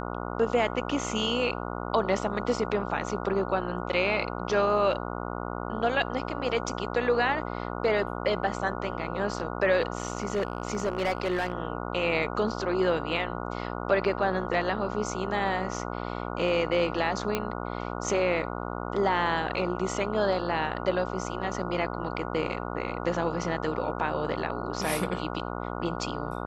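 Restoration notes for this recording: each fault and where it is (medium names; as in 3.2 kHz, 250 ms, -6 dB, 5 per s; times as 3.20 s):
buzz 60 Hz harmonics 24 -34 dBFS
9.97–11.53 s: clipped -22 dBFS
17.35 s: pop -12 dBFS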